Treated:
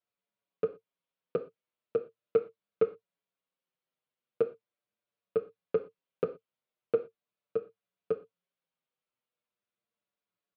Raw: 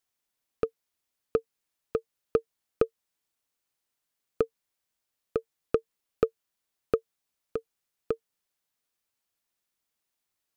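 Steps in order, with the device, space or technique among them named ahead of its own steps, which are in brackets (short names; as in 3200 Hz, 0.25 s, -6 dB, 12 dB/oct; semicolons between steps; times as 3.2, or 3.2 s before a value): HPF 130 Hz 12 dB/oct; high shelf 3600 Hz -8 dB; notch 850 Hz, Q 12; barber-pole flanger into a guitar amplifier (endless flanger 6.5 ms -0.4 Hz; soft clip -18 dBFS, distortion -17 dB; speaker cabinet 100–3900 Hz, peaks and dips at 110 Hz +9 dB, 180 Hz +5 dB, 270 Hz -4 dB, 510 Hz +5 dB, 1800 Hz -5 dB); non-linear reverb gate 0.14 s falling, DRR 7.5 dB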